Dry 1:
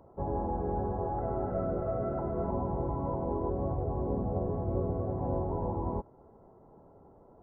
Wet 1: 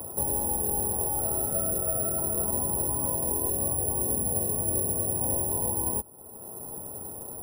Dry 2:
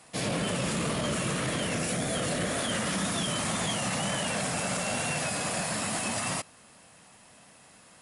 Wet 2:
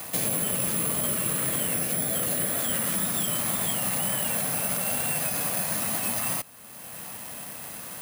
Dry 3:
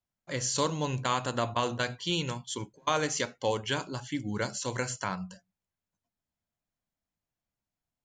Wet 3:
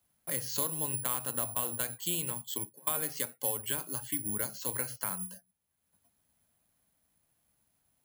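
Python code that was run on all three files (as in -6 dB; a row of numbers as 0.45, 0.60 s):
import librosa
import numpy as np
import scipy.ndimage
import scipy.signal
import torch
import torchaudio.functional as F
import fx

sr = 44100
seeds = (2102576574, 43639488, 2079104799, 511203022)

y = scipy.signal.sosfilt(scipy.signal.butter(2, 41.0, 'highpass', fs=sr, output='sos'), x)
y = (np.kron(scipy.signal.resample_poly(y, 1, 4), np.eye(4)[0]) * 4)[:len(y)]
y = fx.band_squash(y, sr, depth_pct=70)
y = y * 10.0 ** (-12 / 20.0) / np.max(np.abs(y))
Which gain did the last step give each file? -2.0, -2.5, -9.5 dB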